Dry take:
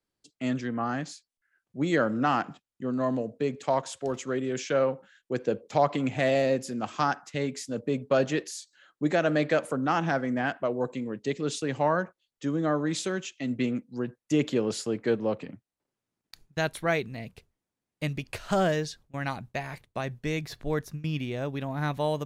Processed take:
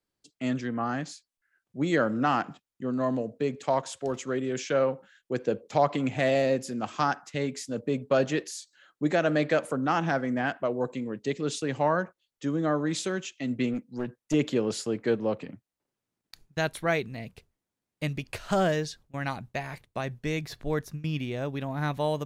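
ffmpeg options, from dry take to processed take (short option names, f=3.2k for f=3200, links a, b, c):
-filter_complex "[0:a]asettb=1/sr,asplit=3[a][b][c];[a]atrim=end=13.734[d];[b]atrim=start=13.73:end=14.34,asetpts=PTS-STARTPTS,afade=t=in:d=0.004:c=qsin,afade=t=out:st=0.606:d=0.004:c=qsin,aeval=exprs='clip(val(0),-1,0.0376)':c=same[e];[c]atrim=start=14.336[f];[d][e]acrossfade=d=0.004:c1=hsin:c2=qsin[g];[g][f]acrossfade=d=0.004:c1=qsin:c2=hsin"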